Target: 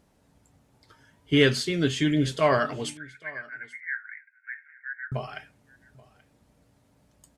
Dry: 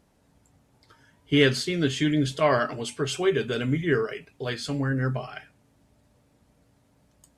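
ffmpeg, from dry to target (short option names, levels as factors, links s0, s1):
-filter_complex "[0:a]asettb=1/sr,asplit=3[s0][s1][s2];[s0]atrim=end=2.974[s3];[s1]atrim=start=2.97:end=5.12,asetpts=PTS-STARTPTS,afade=t=in:d=0.004:c=qsin,afade=t=out:st=2.146:d=0.004:c=qsin,asuperpass=centerf=1800:order=12:qfactor=2.4[s4];[s2]atrim=start=5.116[s5];[s3][s4]acrossfade=d=0.004:c1=hsin:c2=qsin[s6];[s6][s5]acrossfade=d=0.004:c1=qsin:c2=hsin,aecho=1:1:831:0.0708"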